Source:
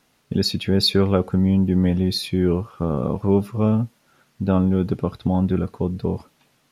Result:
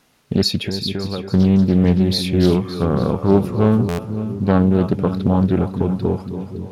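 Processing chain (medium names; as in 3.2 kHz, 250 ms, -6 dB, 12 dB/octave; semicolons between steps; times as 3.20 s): 0.60–1.33 s: compression 12:1, threshold -25 dBFS, peak gain reduction 13.5 dB; two-band feedback delay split 390 Hz, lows 501 ms, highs 283 ms, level -9.5 dB; buffer glitch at 3.88 s, samples 512, times 8; loudspeaker Doppler distortion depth 0.36 ms; trim +4 dB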